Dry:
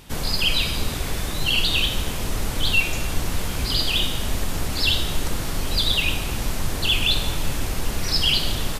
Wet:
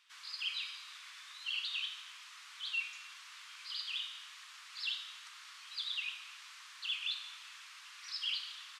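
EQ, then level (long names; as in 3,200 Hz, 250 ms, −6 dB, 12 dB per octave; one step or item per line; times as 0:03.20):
elliptic high-pass filter 1,100 Hz, stop band 80 dB
first difference
head-to-tape spacing loss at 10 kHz 32 dB
+1.0 dB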